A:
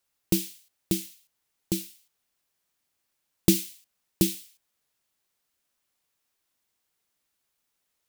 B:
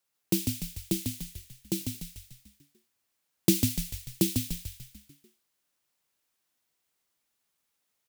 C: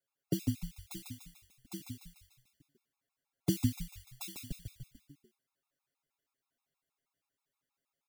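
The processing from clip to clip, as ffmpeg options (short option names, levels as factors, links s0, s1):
-filter_complex "[0:a]highpass=f=93:w=0.5412,highpass=f=93:w=1.3066,asplit=8[s0][s1][s2][s3][s4][s5][s6][s7];[s1]adelay=147,afreqshift=-79,volume=0.631[s8];[s2]adelay=294,afreqshift=-158,volume=0.335[s9];[s3]adelay=441,afreqshift=-237,volume=0.178[s10];[s4]adelay=588,afreqshift=-316,volume=0.0944[s11];[s5]adelay=735,afreqshift=-395,volume=0.0495[s12];[s6]adelay=882,afreqshift=-474,volume=0.0263[s13];[s7]adelay=1029,afreqshift=-553,volume=0.014[s14];[s0][s8][s9][s10][s11][s12][s13][s14]amix=inputs=8:normalize=0,volume=0.75"
-af "highshelf=f=2500:g=-9.5,aecho=1:1:7.3:0.94,afftfilt=real='re*gt(sin(2*PI*6.3*pts/sr)*(1-2*mod(floor(b*sr/1024/690),2)),0)':imag='im*gt(sin(2*PI*6.3*pts/sr)*(1-2*mod(floor(b*sr/1024/690),2)),0)':win_size=1024:overlap=0.75,volume=0.631"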